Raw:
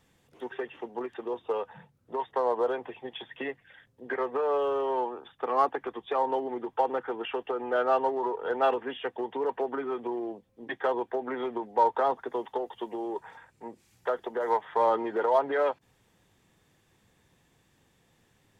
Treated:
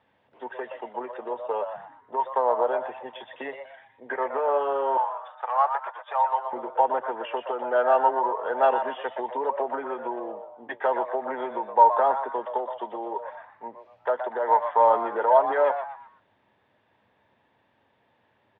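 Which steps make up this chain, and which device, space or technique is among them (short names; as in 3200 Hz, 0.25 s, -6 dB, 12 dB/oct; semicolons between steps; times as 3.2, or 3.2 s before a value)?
frequency-shifting delay pedal into a guitar cabinet (frequency-shifting echo 0.121 s, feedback 34%, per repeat +130 Hz, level -9 dB; speaker cabinet 110–3400 Hz, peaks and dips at 160 Hz -10 dB, 330 Hz -3 dB, 610 Hz +8 dB, 910 Hz +9 dB, 1600 Hz +4 dB); 4.97–6.53 HPF 690 Hz 24 dB/oct; gain -1.5 dB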